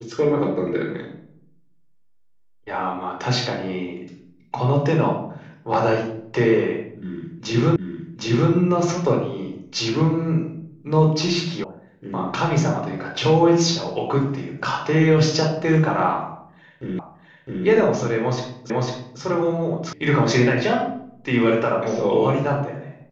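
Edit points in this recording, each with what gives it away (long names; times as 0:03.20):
0:07.76: the same again, the last 0.76 s
0:11.64: cut off before it has died away
0:16.99: the same again, the last 0.66 s
0:18.70: the same again, the last 0.5 s
0:19.93: cut off before it has died away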